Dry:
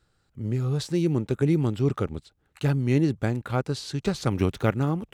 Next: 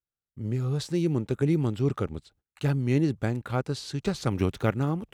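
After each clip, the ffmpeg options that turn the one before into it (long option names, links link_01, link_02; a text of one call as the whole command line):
ffmpeg -i in.wav -af "agate=range=-29dB:threshold=-57dB:ratio=16:detection=peak,volume=-2dB" out.wav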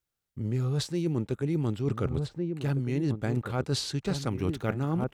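ffmpeg -i in.wav -filter_complex "[0:a]asplit=2[link_01][link_02];[link_02]adelay=1458,volume=-10dB,highshelf=frequency=4000:gain=-32.8[link_03];[link_01][link_03]amix=inputs=2:normalize=0,areverse,acompressor=threshold=-33dB:ratio=12,areverse,volume=8dB" out.wav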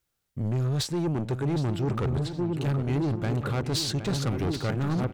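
ffmpeg -i in.wav -filter_complex "[0:a]asoftclip=type=tanh:threshold=-29.5dB,asplit=2[link_01][link_02];[link_02]adelay=765,lowpass=frequency=4000:poles=1,volume=-10dB,asplit=2[link_03][link_04];[link_04]adelay=765,lowpass=frequency=4000:poles=1,volume=0.43,asplit=2[link_05][link_06];[link_06]adelay=765,lowpass=frequency=4000:poles=1,volume=0.43,asplit=2[link_07][link_08];[link_08]adelay=765,lowpass=frequency=4000:poles=1,volume=0.43,asplit=2[link_09][link_10];[link_10]adelay=765,lowpass=frequency=4000:poles=1,volume=0.43[link_11];[link_01][link_03][link_05][link_07][link_09][link_11]amix=inputs=6:normalize=0,volume=6.5dB" out.wav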